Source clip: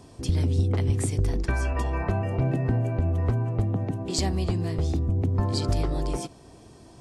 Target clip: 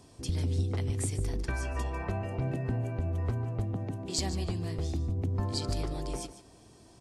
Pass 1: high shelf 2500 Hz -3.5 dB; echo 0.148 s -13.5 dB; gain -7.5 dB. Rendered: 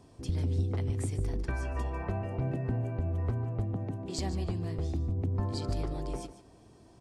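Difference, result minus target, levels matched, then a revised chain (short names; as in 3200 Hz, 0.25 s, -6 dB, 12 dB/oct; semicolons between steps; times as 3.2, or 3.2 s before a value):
4000 Hz band -6.5 dB
high shelf 2500 Hz +5.5 dB; echo 0.148 s -13.5 dB; gain -7.5 dB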